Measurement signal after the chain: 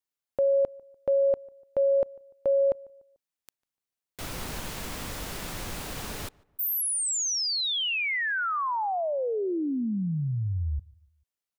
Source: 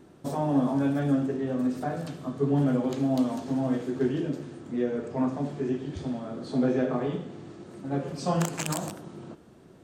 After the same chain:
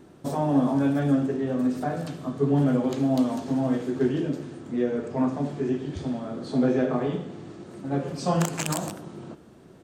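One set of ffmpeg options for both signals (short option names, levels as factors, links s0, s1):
-filter_complex "[0:a]asplit=2[s0][s1];[s1]adelay=147,lowpass=f=1800:p=1,volume=0.0631,asplit=2[s2][s3];[s3]adelay=147,lowpass=f=1800:p=1,volume=0.42,asplit=2[s4][s5];[s5]adelay=147,lowpass=f=1800:p=1,volume=0.42[s6];[s0][s2][s4][s6]amix=inputs=4:normalize=0,volume=1.33"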